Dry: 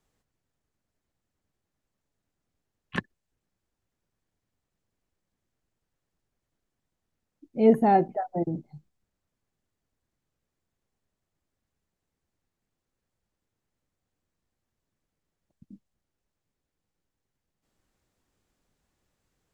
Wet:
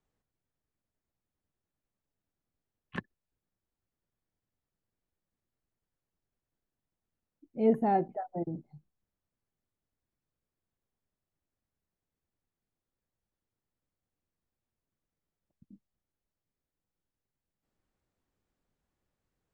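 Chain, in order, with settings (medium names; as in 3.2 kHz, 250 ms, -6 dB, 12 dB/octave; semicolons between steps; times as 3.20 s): treble shelf 3.4 kHz -8.5 dB; trim -6.5 dB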